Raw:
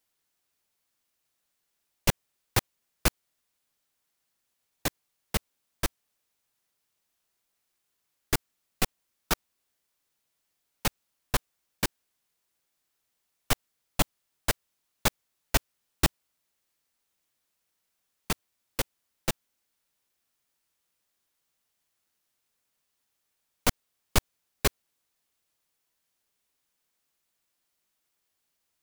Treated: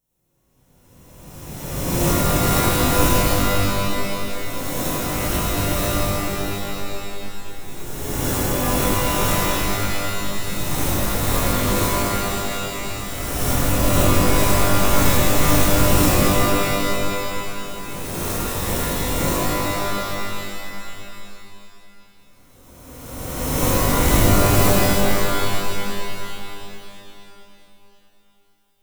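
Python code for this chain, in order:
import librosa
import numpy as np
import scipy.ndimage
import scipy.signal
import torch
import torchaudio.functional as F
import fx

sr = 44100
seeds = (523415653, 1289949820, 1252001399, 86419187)

y = fx.spec_swells(x, sr, rise_s=2.03)
y = fx.peak_eq(y, sr, hz=2200.0, db=-9.5, octaves=2.2)
y = fx.notch(y, sr, hz=4700.0, q=5.9)
y = fx.rev_shimmer(y, sr, seeds[0], rt60_s=3.0, semitones=12, shimmer_db=-2, drr_db=-9.0)
y = y * librosa.db_to_amplitude(-5.0)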